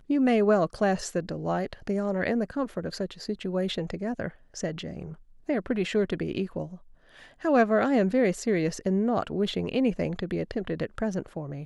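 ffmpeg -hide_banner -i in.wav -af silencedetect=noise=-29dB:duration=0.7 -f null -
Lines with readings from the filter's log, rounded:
silence_start: 6.64
silence_end: 7.45 | silence_duration: 0.81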